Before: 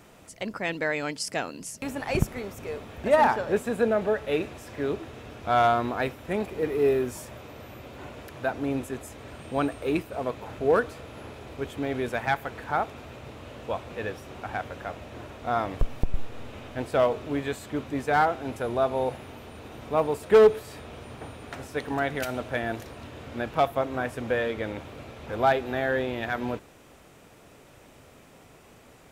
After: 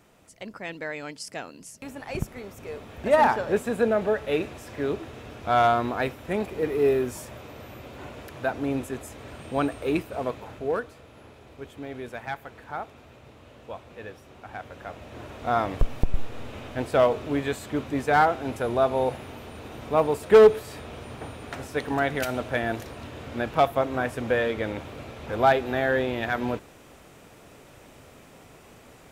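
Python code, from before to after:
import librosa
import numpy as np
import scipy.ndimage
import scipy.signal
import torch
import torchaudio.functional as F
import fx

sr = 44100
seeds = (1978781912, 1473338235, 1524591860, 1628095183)

y = fx.gain(x, sr, db=fx.line((2.15, -6.0), (3.19, 1.0), (10.27, 1.0), (10.87, -7.5), (14.43, -7.5), (15.43, 2.5)))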